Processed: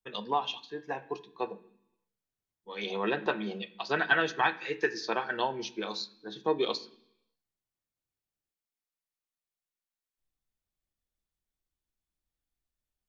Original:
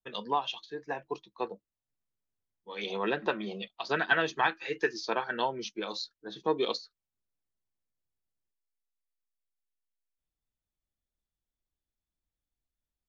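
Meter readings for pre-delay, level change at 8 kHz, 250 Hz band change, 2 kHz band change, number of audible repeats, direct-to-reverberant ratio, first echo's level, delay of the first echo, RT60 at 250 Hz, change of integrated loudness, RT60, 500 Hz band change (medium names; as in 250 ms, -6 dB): 3 ms, no reading, +1.0 dB, +1.0 dB, no echo, 9.5 dB, no echo, no echo, 0.85 s, +0.5 dB, 0.70 s, 0.0 dB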